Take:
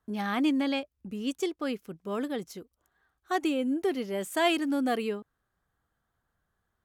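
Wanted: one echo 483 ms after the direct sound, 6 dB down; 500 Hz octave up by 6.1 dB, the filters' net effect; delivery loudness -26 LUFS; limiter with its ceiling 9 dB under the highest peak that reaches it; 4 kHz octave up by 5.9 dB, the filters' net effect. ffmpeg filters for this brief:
-af "equalizer=f=500:t=o:g=8,equalizer=f=4000:t=o:g=8,alimiter=limit=0.133:level=0:latency=1,aecho=1:1:483:0.501,volume=1.19"

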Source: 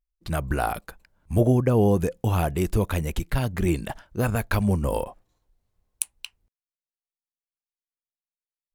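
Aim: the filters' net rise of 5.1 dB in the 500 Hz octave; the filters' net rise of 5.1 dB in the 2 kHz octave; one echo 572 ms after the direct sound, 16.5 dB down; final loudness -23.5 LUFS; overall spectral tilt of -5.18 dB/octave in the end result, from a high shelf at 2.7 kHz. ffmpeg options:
-af "equalizer=f=500:t=o:g=6,equalizer=f=2000:t=o:g=8.5,highshelf=f=2700:g=-4,aecho=1:1:572:0.15,volume=0.891"

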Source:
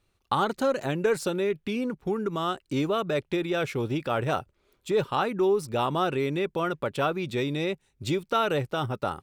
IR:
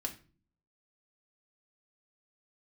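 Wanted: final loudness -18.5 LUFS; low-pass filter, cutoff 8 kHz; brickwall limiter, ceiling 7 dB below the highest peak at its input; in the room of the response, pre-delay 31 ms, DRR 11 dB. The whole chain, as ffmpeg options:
-filter_complex "[0:a]lowpass=8000,alimiter=limit=0.112:level=0:latency=1,asplit=2[s0][s1];[1:a]atrim=start_sample=2205,adelay=31[s2];[s1][s2]afir=irnorm=-1:irlink=0,volume=0.266[s3];[s0][s3]amix=inputs=2:normalize=0,volume=3.35"

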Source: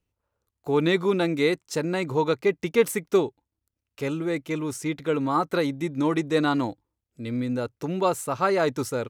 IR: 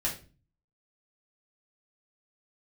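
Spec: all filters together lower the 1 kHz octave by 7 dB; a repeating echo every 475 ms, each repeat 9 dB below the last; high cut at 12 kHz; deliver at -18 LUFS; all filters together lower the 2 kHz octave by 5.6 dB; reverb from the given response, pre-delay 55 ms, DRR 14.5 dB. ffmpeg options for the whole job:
-filter_complex "[0:a]lowpass=12000,equalizer=f=1000:t=o:g=-8,equalizer=f=2000:t=o:g=-4.5,aecho=1:1:475|950|1425|1900:0.355|0.124|0.0435|0.0152,asplit=2[s0][s1];[1:a]atrim=start_sample=2205,adelay=55[s2];[s1][s2]afir=irnorm=-1:irlink=0,volume=0.1[s3];[s0][s3]amix=inputs=2:normalize=0,volume=2.66"

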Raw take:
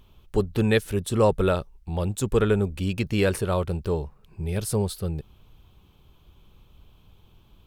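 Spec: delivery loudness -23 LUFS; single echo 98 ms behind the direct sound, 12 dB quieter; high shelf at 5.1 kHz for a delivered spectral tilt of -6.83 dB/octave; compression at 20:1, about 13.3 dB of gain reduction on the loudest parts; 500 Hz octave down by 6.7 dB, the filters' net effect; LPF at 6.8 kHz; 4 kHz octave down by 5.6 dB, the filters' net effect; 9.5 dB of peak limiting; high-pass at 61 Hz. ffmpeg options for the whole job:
-af "highpass=61,lowpass=6800,equalizer=f=500:t=o:g=-8,equalizer=f=4000:t=o:g=-3.5,highshelf=f=5100:g=-8,acompressor=threshold=0.0224:ratio=20,alimiter=level_in=2.99:limit=0.0631:level=0:latency=1,volume=0.335,aecho=1:1:98:0.251,volume=10.6"

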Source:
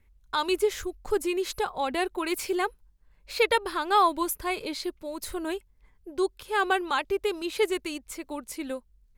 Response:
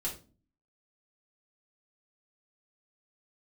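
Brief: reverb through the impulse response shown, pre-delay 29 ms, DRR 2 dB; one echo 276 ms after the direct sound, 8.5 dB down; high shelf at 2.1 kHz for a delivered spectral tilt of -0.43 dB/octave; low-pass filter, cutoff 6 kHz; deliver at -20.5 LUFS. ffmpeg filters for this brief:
-filter_complex "[0:a]lowpass=6000,highshelf=f=2100:g=4,aecho=1:1:276:0.376,asplit=2[s0][s1];[1:a]atrim=start_sample=2205,adelay=29[s2];[s1][s2]afir=irnorm=-1:irlink=0,volume=0.631[s3];[s0][s3]amix=inputs=2:normalize=0,volume=1.58"

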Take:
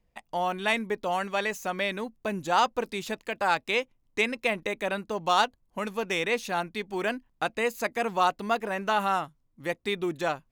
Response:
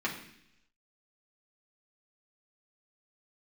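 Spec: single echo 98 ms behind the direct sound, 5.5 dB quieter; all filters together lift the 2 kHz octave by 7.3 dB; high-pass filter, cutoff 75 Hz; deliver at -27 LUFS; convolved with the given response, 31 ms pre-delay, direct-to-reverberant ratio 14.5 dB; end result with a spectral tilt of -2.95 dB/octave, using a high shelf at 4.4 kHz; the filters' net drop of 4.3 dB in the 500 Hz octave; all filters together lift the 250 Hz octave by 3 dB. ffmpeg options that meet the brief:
-filter_complex "[0:a]highpass=75,equalizer=f=250:t=o:g=6,equalizer=f=500:t=o:g=-8,equalizer=f=2000:t=o:g=8,highshelf=f=4400:g=6.5,aecho=1:1:98:0.531,asplit=2[s0][s1];[1:a]atrim=start_sample=2205,adelay=31[s2];[s1][s2]afir=irnorm=-1:irlink=0,volume=0.0841[s3];[s0][s3]amix=inputs=2:normalize=0,volume=0.708"

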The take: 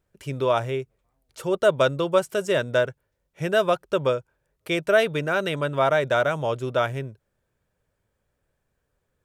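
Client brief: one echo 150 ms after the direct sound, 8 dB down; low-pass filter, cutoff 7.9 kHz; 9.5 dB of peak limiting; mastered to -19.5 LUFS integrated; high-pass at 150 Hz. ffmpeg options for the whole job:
-af "highpass=150,lowpass=7900,alimiter=limit=0.15:level=0:latency=1,aecho=1:1:150:0.398,volume=2.66"

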